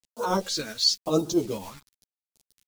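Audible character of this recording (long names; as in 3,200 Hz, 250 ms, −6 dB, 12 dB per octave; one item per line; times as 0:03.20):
a quantiser's noise floor 8 bits, dither none
phaser sweep stages 2, 1 Hz, lowest notch 510–2,000 Hz
tremolo saw up 8.3 Hz, depth 55%
a shimmering, thickened sound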